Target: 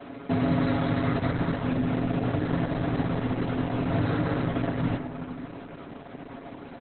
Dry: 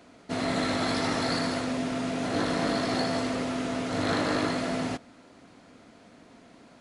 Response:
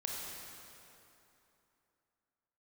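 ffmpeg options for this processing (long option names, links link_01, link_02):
-filter_complex "[0:a]highpass=frequency=47:poles=1,equalizer=frequency=75:width_type=o:width=0.31:gain=12,bandreject=frequency=3600:width=19,aecho=1:1:7.2:0.92,adynamicequalizer=threshold=0.00398:dfrequency=100:dqfactor=2.9:tfrequency=100:tqfactor=2.9:attack=5:release=100:ratio=0.375:range=1.5:mode=cutabove:tftype=bell,acrossover=split=170[link_01][link_02];[link_02]acompressor=threshold=-37dB:ratio=6[link_03];[link_01][link_03]amix=inputs=2:normalize=0,asplit=2[link_04][link_05];[link_05]adelay=269,lowpass=frequency=4000:poles=1,volume=-21dB,asplit=2[link_06][link_07];[link_07]adelay=269,lowpass=frequency=4000:poles=1,volume=0.47,asplit=2[link_08][link_09];[link_09]adelay=269,lowpass=frequency=4000:poles=1,volume=0.47[link_10];[link_04][link_06][link_08][link_10]amix=inputs=4:normalize=0,asplit=2[link_11][link_12];[1:a]atrim=start_sample=2205,lowpass=2200[link_13];[link_12][link_13]afir=irnorm=-1:irlink=0,volume=-4dB[link_14];[link_11][link_14]amix=inputs=2:normalize=0,volume=7.5dB" -ar 48000 -c:a libopus -b:a 8k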